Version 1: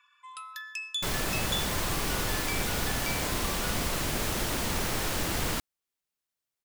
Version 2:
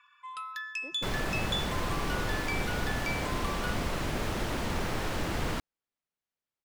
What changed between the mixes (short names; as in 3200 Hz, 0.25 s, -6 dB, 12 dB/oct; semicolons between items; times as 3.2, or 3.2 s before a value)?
speech: unmuted; first sound +5.0 dB; master: add LPF 2200 Hz 6 dB/oct